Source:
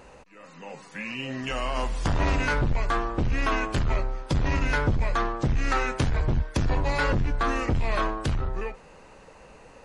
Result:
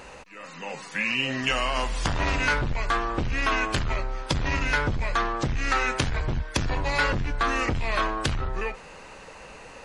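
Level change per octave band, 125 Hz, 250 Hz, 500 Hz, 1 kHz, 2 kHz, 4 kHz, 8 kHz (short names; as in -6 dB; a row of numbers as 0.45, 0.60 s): -3.0, -1.5, -0.5, +2.0, +4.5, +6.5, +5.0 dB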